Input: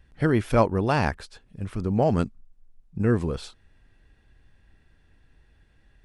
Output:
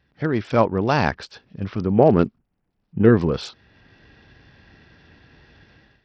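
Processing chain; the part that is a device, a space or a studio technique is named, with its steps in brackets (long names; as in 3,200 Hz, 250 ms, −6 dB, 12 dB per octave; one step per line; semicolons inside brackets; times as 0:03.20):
0:01.98–0:03.09: dynamic equaliser 380 Hz, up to +7 dB, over −37 dBFS, Q 1.9
Bluetooth headset (high-pass filter 110 Hz 12 dB per octave; automatic gain control gain up to 15.5 dB; downsampling to 16,000 Hz; level −1 dB; SBC 64 kbit/s 44,100 Hz)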